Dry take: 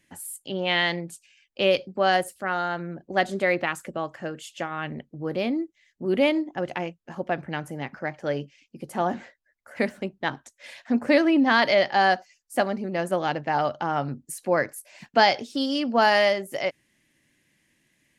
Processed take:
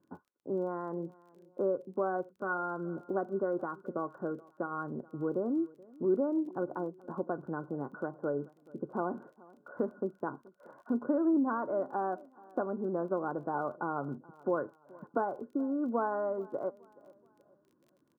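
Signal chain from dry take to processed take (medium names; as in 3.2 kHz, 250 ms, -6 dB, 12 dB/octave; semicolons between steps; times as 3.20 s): high-pass 110 Hz; compression 2:1, threshold -35 dBFS, peak gain reduction 12 dB; rippled Chebyshev low-pass 1.5 kHz, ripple 9 dB; crackle 23 per s -60 dBFS; feedback delay 427 ms, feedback 39%, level -23 dB; trim +5 dB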